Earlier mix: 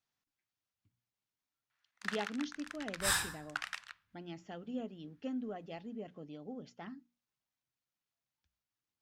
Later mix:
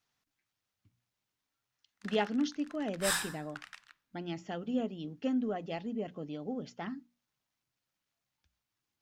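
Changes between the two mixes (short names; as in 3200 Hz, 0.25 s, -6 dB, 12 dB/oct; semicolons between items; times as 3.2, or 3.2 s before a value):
speech +7.5 dB; first sound -8.0 dB; second sound: add bell 84 Hz -14 dB 1.6 oct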